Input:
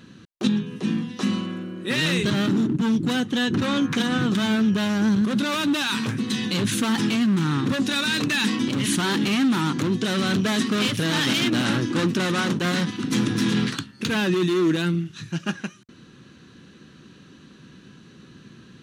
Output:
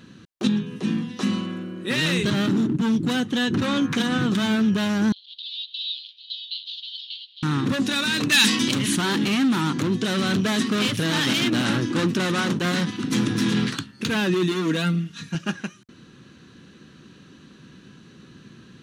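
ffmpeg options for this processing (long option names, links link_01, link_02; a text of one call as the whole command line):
ffmpeg -i in.wav -filter_complex "[0:a]asettb=1/sr,asplit=3[link_01][link_02][link_03];[link_01]atrim=end=5.124[link_04];[link_02]atrim=start=5.12:end=7.43,asetpts=PTS-STARTPTS,afade=type=in:duration=0.004:curve=qsin,afade=type=out:start_time=2.306:duration=0.004:curve=qsin,asuperpass=centerf=3700:order=8:qfactor=2.4[link_05];[link_03]atrim=start=7.426[link_06];[link_04][link_05]acrossfade=duration=0.004:curve1=hsin:curve2=qsin[link_07];[link_07][link_06]acrossfade=duration=0.004:curve1=qsin:curve2=hsin,asplit=3[link_08][link_09][link_10];[link_08]afade=type=out:start_time=8.31:duration=0.02[link_11];[link_09]highshelf=frequency=2200:gain=12,afade=type=in:start_time=8.31:duration=0.02,afade=type=out:start_time=8.77:duration=0.02[link_12];[link_10]afade=type=in:start_time=8.77:duration=0.02[link_13];[link_11][link_12][link_13]amix=inputs=3:normalize=0,asettb=1/sr,asplit=3[link_14][link_15][link_16];[link_14]atrim=end=14.514[link_17];[link_15]atrim=start=14.51:end=15.35,asetpts=PTS-STARTPTS,afade=type=in:duration=0.004:curve=qsin,afade=type=out:start_time=0.836:duration=0.004:curve=qsin,aecho=1:1:4.3:0.69,atrim=end_sample=37044[link_18];[link_16]atrim=start=15.346[link_19];[link_17][link_18]acrossfade=duration=0.004:curve1=hsin:curve2=qsin[link_20];[link_20][link_19]acrossfade=duration=0.004:curve1=qsin:curve2=hsin" out.wav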